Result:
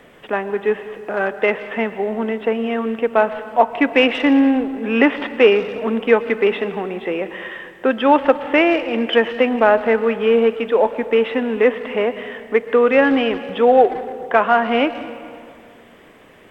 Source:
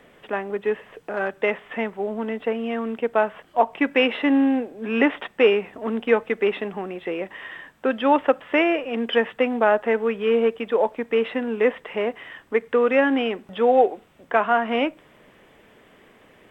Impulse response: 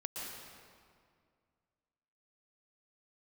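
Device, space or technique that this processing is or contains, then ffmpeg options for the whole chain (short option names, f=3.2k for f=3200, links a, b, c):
saturated reverb return: -filter_complex "[0:a]asplit=2[a][b];[1:a]atrim=start_sample=2205[c];[b][c]afir=irnorm=-1:irlink=0,asoftclip=type=tanh:threshold=-16.5dB,volume=-8.5dB[d];[a][d]amix=inputs=2:normalize=0,volume=3.5dB"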